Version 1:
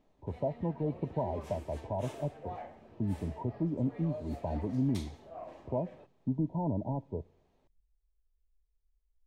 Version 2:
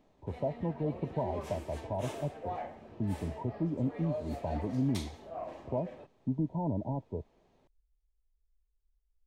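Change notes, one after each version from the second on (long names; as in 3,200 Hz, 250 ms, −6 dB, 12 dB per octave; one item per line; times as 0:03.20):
background +4.5 dB
reverb: off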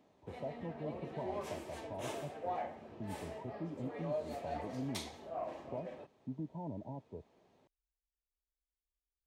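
speech −9.0 dB
master: add high-pass filter 120 Hz 6 dB per octave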